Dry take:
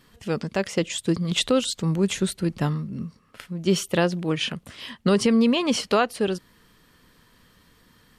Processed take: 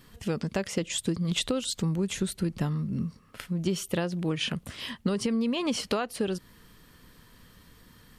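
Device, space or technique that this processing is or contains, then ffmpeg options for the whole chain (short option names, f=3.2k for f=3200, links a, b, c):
ASMR close-microphone chain: -af "lowshelf=f=170:g=6,acompressor=threshold=-25dB:ratio=6,highshelf=f=10k:g=6"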